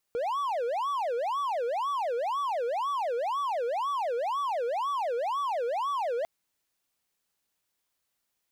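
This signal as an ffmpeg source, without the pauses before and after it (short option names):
-f lavfi -i "aevalsrc='0.0562*(1-4*abs(mod((807.5*t-342.5/(2*PI*2)*sin(2*PI*2*t))+0.25,1)-0.5))':d=6.1:s=44100"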